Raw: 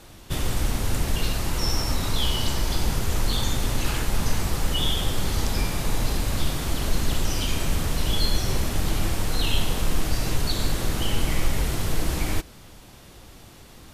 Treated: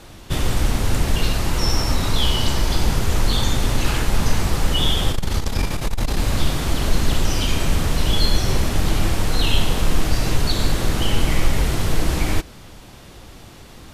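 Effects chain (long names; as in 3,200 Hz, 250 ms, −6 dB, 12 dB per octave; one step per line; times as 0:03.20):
high-shelf EQ 8,400 Hz −6.5 dB
0:05.09–0:06.17: saturating transformer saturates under 60 Hz
level +5.5 dB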